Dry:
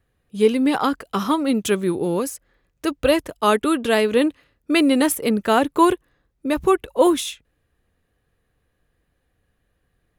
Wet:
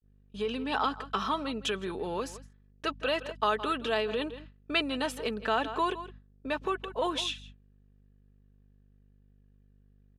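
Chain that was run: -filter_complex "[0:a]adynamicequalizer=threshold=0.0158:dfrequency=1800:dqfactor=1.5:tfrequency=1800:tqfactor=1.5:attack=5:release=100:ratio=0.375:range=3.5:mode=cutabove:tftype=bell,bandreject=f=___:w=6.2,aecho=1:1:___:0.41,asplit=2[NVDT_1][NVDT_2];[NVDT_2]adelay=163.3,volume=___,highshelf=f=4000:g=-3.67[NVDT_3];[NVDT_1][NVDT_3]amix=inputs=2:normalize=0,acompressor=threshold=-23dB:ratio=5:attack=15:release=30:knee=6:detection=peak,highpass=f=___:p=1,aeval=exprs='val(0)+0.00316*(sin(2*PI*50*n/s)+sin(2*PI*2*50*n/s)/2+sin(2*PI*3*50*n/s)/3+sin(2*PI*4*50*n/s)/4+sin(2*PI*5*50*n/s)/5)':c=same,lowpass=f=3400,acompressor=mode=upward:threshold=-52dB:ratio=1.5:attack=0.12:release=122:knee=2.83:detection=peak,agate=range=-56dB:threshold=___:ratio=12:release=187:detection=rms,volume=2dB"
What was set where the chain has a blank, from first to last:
2100, 4.6, -19dB, 1400, -48dB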